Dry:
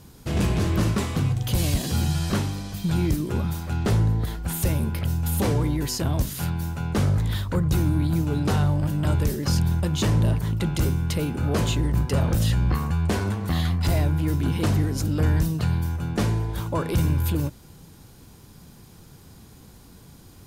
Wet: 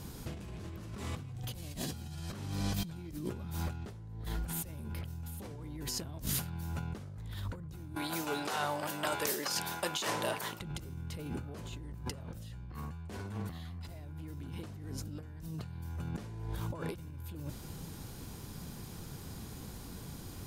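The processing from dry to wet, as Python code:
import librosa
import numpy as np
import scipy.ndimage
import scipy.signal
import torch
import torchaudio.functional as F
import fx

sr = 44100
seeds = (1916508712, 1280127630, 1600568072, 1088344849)

y = fx.highpass(x, sr, hz=650.0, slope=12, at=(7.95, 10.61))
y = fx.over_compress(y, sr, threshold_db=-34.0, ratio=-1.0)
y = y * 10.0 ** (-6.5 / 20.0)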